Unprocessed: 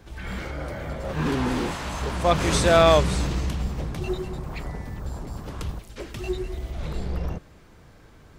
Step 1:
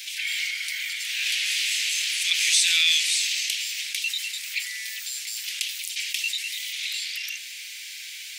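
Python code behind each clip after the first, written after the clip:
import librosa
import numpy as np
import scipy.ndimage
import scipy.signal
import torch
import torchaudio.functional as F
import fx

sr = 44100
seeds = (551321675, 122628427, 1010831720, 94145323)

y = scipy.signal.sosfilt(scipy.signal.butter(8, 2200.0, 'highpass', fs=sr, output='sos'), x)
y = fx.env_flatten(y, sr, amount_pct=50)
y = y * librosa.db_to_amplitude(7.0)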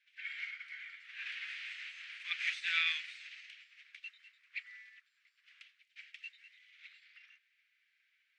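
y = fx.lowpass_res(x, sr, hz=1400.0, q=1.8)
y = fx.upward_expand(y, sr, threshold_db=-48.0, expansion=2.5)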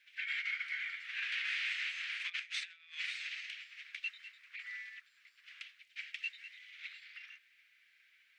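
y = fx.over_compress(x, sr, threshold_db=-44.0, ratio=-0.5)
y = y * librosa.db_to_amplitude(4.5)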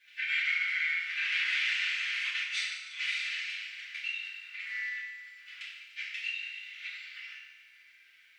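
y = fx.echo_feedback(x, sr, ms=147, feedback_pct=58, wet_db=-12.0)
y = fx.rev_fdn(y, sr, rt60_s=0.87, lf_ratio=1.2, hf_ratio=0.95, size_ms=20.0, drr_db=-6.5)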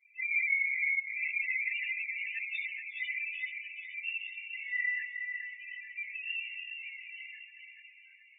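y = fx.spec_topn(x, sr, count=2)
y = fx.echo_feedback(y, sr, ms=429, feedback_pct=53, wet_db=-7.0)
y = fx.ensemble(y, sr)
y = y * librosa.db_to_amplitude(9.0)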